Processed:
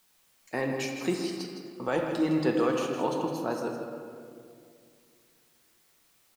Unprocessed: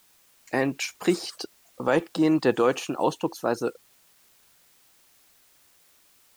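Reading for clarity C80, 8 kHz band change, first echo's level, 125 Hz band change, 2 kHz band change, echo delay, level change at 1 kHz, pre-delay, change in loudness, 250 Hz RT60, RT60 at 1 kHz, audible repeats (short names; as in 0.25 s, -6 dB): 3.5 dB, -5.5 dB, -9.5 dB, -2.0 dB, -5.0 dB, 0.16 s, -4.0 dB, 4 ms, -4.5 dB, 2.8 s, 2.1 s, 1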